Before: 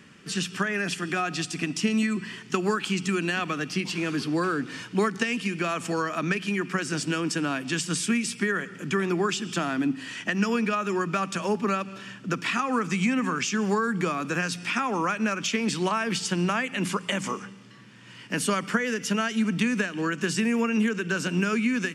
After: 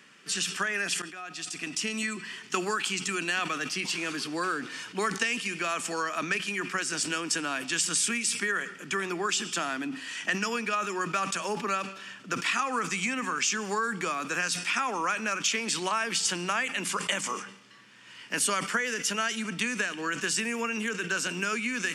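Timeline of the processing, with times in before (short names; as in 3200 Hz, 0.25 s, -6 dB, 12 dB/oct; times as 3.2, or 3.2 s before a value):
1.02–2.02 fade in linear, from -20 dB
whole clip: HPF 780 Hz 6 dB/oct; dynamic EQ 8200 Hz, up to +5 dB, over -48 dBFS, Q 0.97; sustainer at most 96 dB/s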